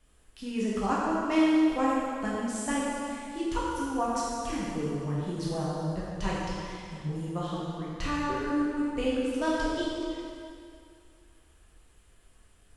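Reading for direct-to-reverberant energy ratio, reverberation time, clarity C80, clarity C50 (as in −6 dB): −7.5 dB, 2.3 s, −0.5 dB, −2.5 dB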